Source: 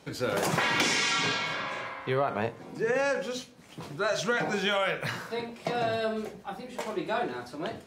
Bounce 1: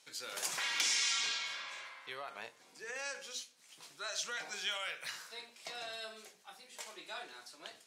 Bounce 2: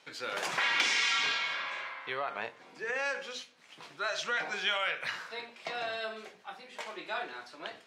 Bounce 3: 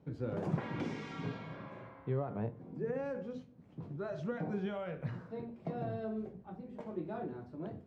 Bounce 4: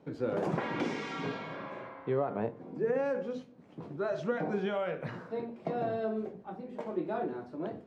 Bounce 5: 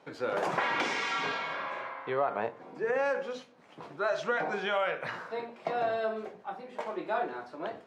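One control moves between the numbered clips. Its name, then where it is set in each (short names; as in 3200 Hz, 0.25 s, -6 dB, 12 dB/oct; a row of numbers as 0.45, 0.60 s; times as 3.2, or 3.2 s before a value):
band-pass, frequency: 7800, 2600, 110, 280, 850 Hz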